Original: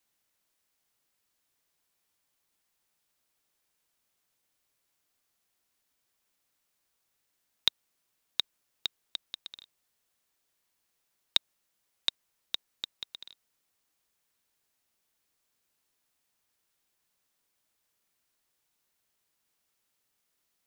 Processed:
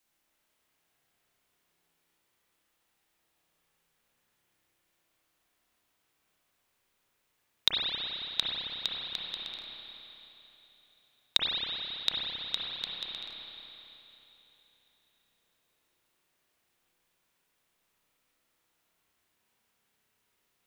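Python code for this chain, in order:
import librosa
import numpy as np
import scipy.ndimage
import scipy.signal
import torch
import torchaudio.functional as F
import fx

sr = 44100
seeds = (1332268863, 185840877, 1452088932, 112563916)

y = fx.rev_spring(x, sr, rt60_s=3.4, pass_ms=(30, 54), chirp_ms=55, drr_db=-5.5)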